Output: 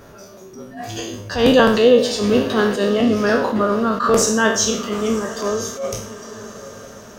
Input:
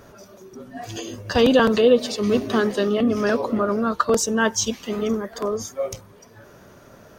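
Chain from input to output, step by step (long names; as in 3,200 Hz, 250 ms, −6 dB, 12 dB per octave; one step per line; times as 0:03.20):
peak hold with a decay on every bin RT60 0.54 s
feedback delay with all-pass diffusion 959 ms, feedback 42%, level −15 dB
level that may rise only so fast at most 120 dB per second
level +2.5 dB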